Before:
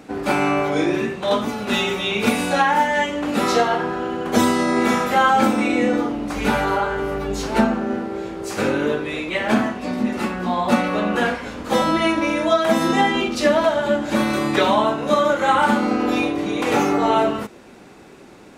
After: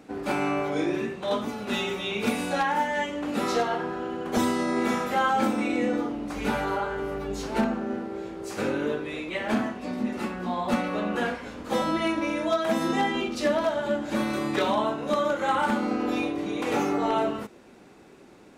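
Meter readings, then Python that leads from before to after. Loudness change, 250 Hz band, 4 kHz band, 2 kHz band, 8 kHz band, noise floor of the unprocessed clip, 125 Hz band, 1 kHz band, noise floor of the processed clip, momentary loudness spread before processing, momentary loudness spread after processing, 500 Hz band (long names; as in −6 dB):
−7.5 dB, −7.0 dB, −8.5 dB, −8.5 dB, −8.5 dB, −44 dBFS, −8.0 dB, −8.0 dB, −51 dBFS, 7 LU, 7 LU, −7.5 dB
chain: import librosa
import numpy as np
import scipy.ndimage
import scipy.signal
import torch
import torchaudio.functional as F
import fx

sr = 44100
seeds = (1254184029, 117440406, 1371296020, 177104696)

y = fx.peak_eq(x, sr, hz=340.0, db=2.0, octaves=1.7)
y = 10.0 ** (-7.0 / 20.0) * (np.abs((y / 10.0 ** (-7.0 / 20.0) + 3.0) % 4.0 - 2.0) - 1.0)
y = y * 10.0 ** (-8.5 / 20.0)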